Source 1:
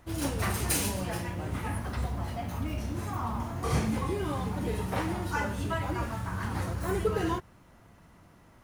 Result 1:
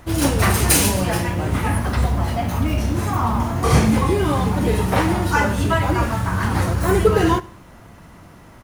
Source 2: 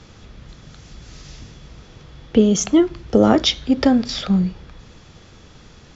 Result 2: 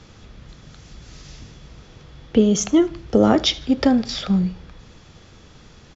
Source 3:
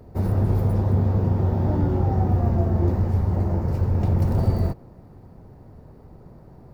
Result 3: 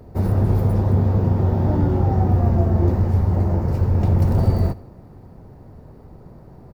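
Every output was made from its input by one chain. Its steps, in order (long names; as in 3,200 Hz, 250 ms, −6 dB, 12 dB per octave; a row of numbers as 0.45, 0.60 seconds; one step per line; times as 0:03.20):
repeating echo 77 ms, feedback 47%, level −22 dB
loudness normalisation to −19 LKFS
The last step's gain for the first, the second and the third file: +13.0, −1.5, +3.0 decibels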